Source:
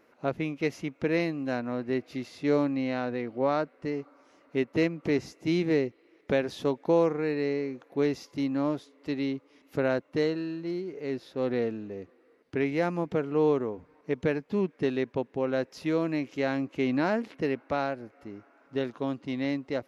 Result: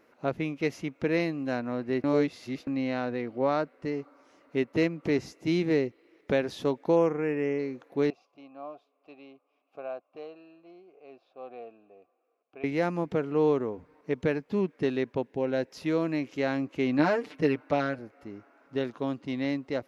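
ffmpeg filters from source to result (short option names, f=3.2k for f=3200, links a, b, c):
-filter_complex "[0:a]asplit=3[a][b][c];[a]afade=t=out:st=6.95:d=0.02[d];[b]asuperstop=centerf=4200:order=12:qfactor=2.3,afade=t=in:st=6.95:d=0.02,afade=t=out:st=7.58:d=0.02[e];[c]afade=t=in:st=7.58:d=0.02[f];[d][e][f]amix=inputs=3:normalize=0,asettb=1/sr,asplit=3[g][h][i];[g]atrim=end=8.104[j];[h]atrim=start=8.1:end=12.64,asetpts=PTS-STARTPTS,afade=t=in:d=0.004:c=qsin,afade=t=out:st=4.536:d=0.004:c=qsin,asplit=3[k][l][m];[k]bandpass=f=730:t=q:w=8,volume=0dB[n];[l]bandpass=f=1.09k:t=q:w=8,volume=-6dB[o];[m]bandpass=f=2.44k:t=q:w=8,volume=-9dB[p];[n][o][p]amix=inputs=3:normalize=0[q];[i]atrim=start=12.636[r];[j][q]acrossfade=d=0.004:c1=hsin:c2=qsin[s];[s][r]acrossfade=d=0.004:c1=qsin:c2=hsin,asettb=1/sr,asplit=3[t][u][v];[t]atrim=end=15.254[w];[u]atrim=start=15.25:end=15.71,asetpts=PTS-STARTPTS,afade=t=in:d=0.004:c=qsin,afade=t=out:st=0.456:d=0.004:c=qsin,equalizer=f=1.2k:t=o:w=0.22:g=-14[x];[v]atrim=start=15.706[y];[w][x]acrossfade=d=0.004:c1=hsin:c2=qsin[z];[z][y]acrossfade=d=0.004:c1=qsin:c2=hsin,asettb=1/sr,asplit=3[aa][ab][ac];[aa]atrim=end=16.984[ad];[ab]atrim=start=16.98:end=17.99,asetpts=PTS-STARTPTS,afade=t=in:d=0.004:c=qsin,afade=t=out:st=1.006:d=0.004:c=qsin,aecho=1:1:6.7:0.8,atrim=end_sample=44541[ae];[ac]atrim=start=17.986[af];[ad][ae]acrossfade=d=0.004:c1=hsin:c2=qsin[ag];[ag][af]acrossfade=d=0.004:c1=qsin:c2=hsin,asplit=3[ah][ai][aj];[ah]atrim=end=2.042[ak];[ai]atrim=start=2.038:end=2.672,asetpts=PTS-STARTPTS,areverse[al];[aj]atrim=start=2.668[am];[ak][al]acrossfade=d=0.004:c1=hsin:c2=hsin[an];[an][am]acrossfade=d=0.004:c1=hsin:c2=hsin"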